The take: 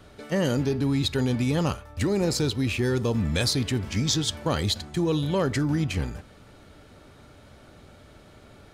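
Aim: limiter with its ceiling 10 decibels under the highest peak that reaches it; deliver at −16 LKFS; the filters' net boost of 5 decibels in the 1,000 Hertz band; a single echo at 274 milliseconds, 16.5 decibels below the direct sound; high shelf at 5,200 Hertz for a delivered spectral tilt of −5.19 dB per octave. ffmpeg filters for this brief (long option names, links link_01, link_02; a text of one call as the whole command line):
ffmpeg -i in.wav -af "equalizer=frequency=1000:width_type=o:gain=6,highshelf=frequency=5200:gain=3.5,alimiter=limit=-20.5dB:level=0:latency=1,aecho=1:1:274:0.15,volume=13dB" out.wav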